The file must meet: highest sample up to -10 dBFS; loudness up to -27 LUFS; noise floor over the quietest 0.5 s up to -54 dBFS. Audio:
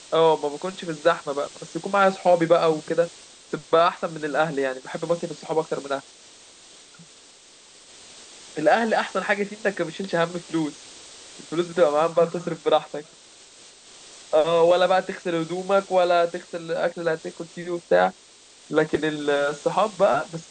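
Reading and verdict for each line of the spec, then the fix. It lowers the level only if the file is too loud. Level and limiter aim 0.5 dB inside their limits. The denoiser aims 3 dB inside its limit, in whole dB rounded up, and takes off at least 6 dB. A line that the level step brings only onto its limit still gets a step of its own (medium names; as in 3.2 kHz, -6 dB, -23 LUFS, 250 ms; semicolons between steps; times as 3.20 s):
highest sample -6.0 dBFS: fail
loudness -23.0 LUFS: fail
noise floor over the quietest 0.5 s -51 dBFS: fail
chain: trim -4.5 dB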